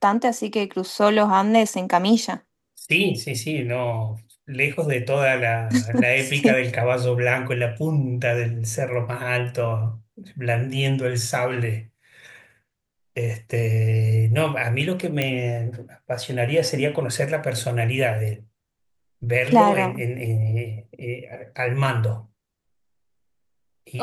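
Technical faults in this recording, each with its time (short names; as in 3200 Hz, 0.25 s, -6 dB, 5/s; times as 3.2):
15.22 pop -9 dBFS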